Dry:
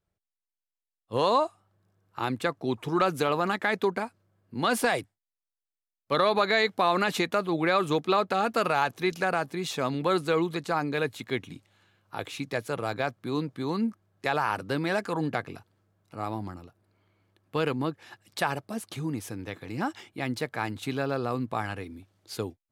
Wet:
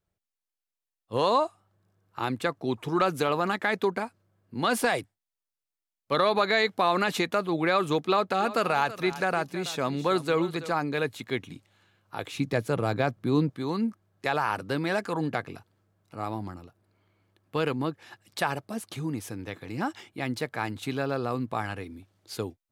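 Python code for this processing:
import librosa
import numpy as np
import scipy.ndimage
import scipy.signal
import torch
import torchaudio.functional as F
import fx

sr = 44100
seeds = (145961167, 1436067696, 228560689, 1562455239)

y = fx.echo_single(x, sr, ms=328, db=-15.0, at=(8.36, 10.69), fade=0.02)
y = fx.low_shelf(y, sr, hz=420.0, db=9.0, at=(12.35, 13.5))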